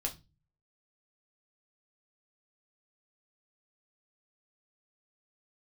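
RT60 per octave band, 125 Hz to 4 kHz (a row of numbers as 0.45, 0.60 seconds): 0.70, 0.50, 0.25, 0.25, 0.25, 0.25 seconds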